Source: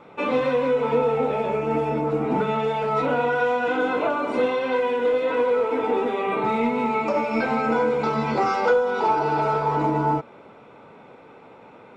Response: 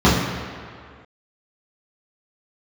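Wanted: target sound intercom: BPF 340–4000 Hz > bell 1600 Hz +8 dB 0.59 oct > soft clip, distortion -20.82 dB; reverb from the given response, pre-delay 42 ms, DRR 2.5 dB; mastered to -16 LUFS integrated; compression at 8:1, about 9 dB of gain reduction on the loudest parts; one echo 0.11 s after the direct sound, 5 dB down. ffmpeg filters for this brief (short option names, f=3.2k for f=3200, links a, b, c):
-filter_complex "[0:a]acompressor=threshold=-25dB:ratio=8,aecho=1:1:110:0.562,asplit=2[a][b];[1:a]atrim=start_sample=2205,adelay=42[c];[b][c]afir=irnorm=-1:irlink=0,volume=-28dB[d];[a][d]amix=inputs=2:normalize=0,highpass=340,lowpass=4k,equalizer=f=1.6k:t=o:w=0.59:g=8,asoftclip=threshold=-16dB,volume=9.5dB"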